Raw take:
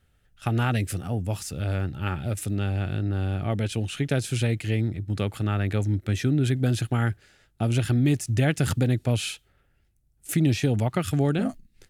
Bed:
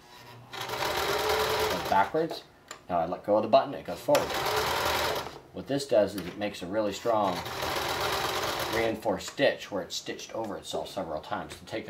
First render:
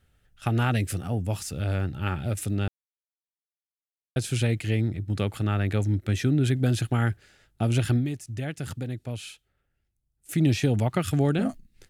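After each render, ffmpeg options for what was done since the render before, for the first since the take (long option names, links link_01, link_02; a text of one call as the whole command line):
ffmpeg -i in.wav -filter_complex "[0:a]asplit=5[link_01][link_02][link_03][link_04][link_05];[link_01]atrim=end=2.68,asetpts=PTS-STARTPTS,afade=type=out:start_time=2.676:duration=0.004:curve=hsin[link_06];[link_02]atrim=start=2.68:end=4.16,asetpts=PTS-STARTPTS,volume=0[link_07];[link_03]atrim=start=4.16:end=8.12,asetpts=PTS-STARTPTS,afade=type=in:duration=0.004:curve=hsin,afade=type=out:start_time=3.8:duration=0.16:curve=qua:silence=0.316228[link_08];[link_04]atrim=start=8.12:end=10.24,asetpts=PTS-STARTPTS,volume=-10dB[link_09];[link_05]atrim=start=10.24,asetpts=PTS-STARTPTS,afade=type=in:duration=0.16:curve=qua:silence=0.316228[link_10];[link_06][link_07][link_08][link_09][link_10]concat=n=5:v=0:a=1" out.wav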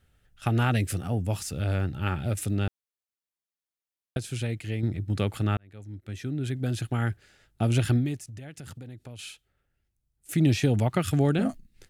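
ffmpeg -i in.wav -filter_complex "[0:a]asettb=1/sr,asplit=3[link_01][link_02][link_03];[link_01]atrim=end=8.274[link_04];[link_02]atrim=start=8.27:end=9.19,asetpts=PTS-STARTPTS,afade=type=in:duration=0.004:curve=qsin,afade=type=out:start_time=0.916:duration=0.004:curve=qsin,acompressor=threshold=-39dB:ratio=5:attack=3.2:release=140:knee=1:detection=peak[link_05];[link_03]atrim=start=9.186[link_06];[link_04][link_05]acrossfade=duration=0.004:curve1=hsin:curve2=qsin[link_07];[link_07][link_06]acrossfade=duration=0.004:curve1=qsin:curve2=hsin,asplit=4[link_08][link_09][link_10][link_11];[link_08]atrim=end=4.172[link_12];[link_09]atrim=start=4.168:end=4.832,asetpts=PTS-STARTPTS,volume=-6dB[link_13];[link_10]atrim=start=4.828:end=5.57,asetpts=PTS-STARTPTS,afade=type=out:start_time=0.738:duration=0.004:curve=hsin[link_14];[link_11]atrim=start=5.57,asetpts=PTS-STARTPTS,afade=type=in:duration=2.07[link_15];[link_12][link_13]acrossfade=duration=0.004:curve1=hsin:curve2=hsin[link_16];[link_14][link_15]concat=n=2:v=0:a=1[link_17];[link_16][link_17]acrossfade=duration=0.004:curve1=hsin:curve2=hsin" out.wav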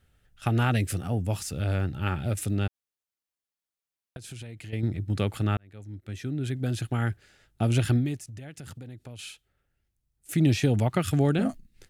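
ffmpeg -i in.wav -filter_complex "[0:a]asettb=1/sr,asplit=3[link_01][link_02][link_03];[link_01]atrim=end=2.674[link_04];[link_02]atrim=start=2.67:end=4.73,asetpts=PTS-STARTPTS,afade=type=in:duration=0.004:curve=qsin,afade=type=out:start_time=2.056:duration=0.004:curve=qsin,acompressor=threshold=-37dB:ratio=6:attack=3.2:release=140:knee=1:detection=peak[link_05];[link_03]atrim=start=4.726[link_06];[link_04][link_05]acrossfade=duration=0.004:curve1=hsin:curve2=qsin[link_07];[link_07][link_06]acrossfade=duration=0.004:curve1=qsin:curve2=hsin" out.wav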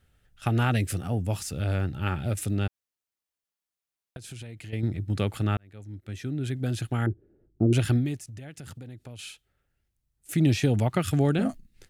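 ffmpeg -i in.wav -filter_complex "[0:a]asettb=1/sr,asplit=3[link_01][link_02][link_03];[link_01]atrim=end=7.064[link_04];[link_02]atrim=start=7.06:end=7.73,asetpts=PTS-STARTPTS,afade=type=in:duration=0.004:curve=qsin,afade=type=out:start_time=0.666:duration=0.004:curve=qsin,lowpass=frequency=350:width_type=q:width=4[link_05];[link_03]atrim=start=7.726[link_06];[link_04][link_05]acrossfade=duration=0.004:curve1=hsin:curve2=qsin[link_07];[link_07][link_06]acrossfade=duration=0.004:curve1=qsin:curve2=hsin" out.wav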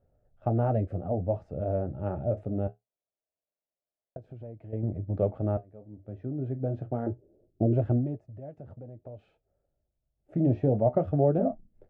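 ffmpeg -i in.wav -af "lowpass=frequency=620:width_type=q:width=4.9,flanger=delay=7.2:depth=9:regen=-56:speed=0.24:shape=triangular" out.wav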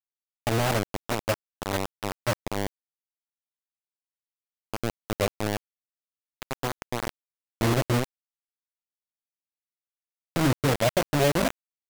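ffmpeg -i in.wav -af "acrusher=bits=3:mix=0:aa=0.000001" out.wav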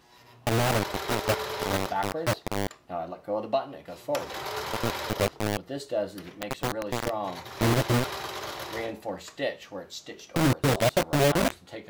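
ffmpeg -i in.wav -i bed.wav -filter_complex "[1:a]volume=-5.5dB[link_01];[0:a][link_01]amix=inputs=2:normalize=0" out.wav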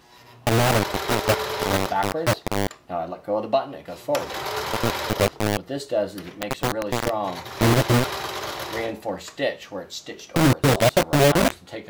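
ffmpeg -i in.wav -af "volume=5.5dB" out.wav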